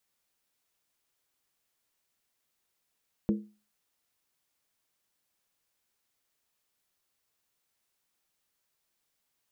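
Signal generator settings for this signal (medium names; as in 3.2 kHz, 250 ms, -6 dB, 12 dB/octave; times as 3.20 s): skin hit, lowest mode 210 Hz, decay 0.34 s, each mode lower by 6.5 dB, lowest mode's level -20.5 dB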